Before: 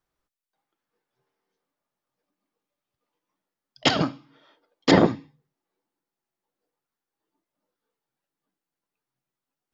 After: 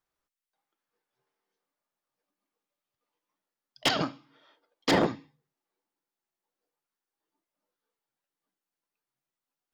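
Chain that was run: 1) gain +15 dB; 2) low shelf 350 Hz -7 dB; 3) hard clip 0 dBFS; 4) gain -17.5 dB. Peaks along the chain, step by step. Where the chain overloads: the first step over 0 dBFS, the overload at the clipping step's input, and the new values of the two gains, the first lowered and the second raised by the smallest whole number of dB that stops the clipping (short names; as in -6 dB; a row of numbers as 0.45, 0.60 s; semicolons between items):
+10.0, +9.0, 0.0, -17.5 dBFS; step 1, 9.0 dB; step 1 +6 dB, step 4 -8.5 dB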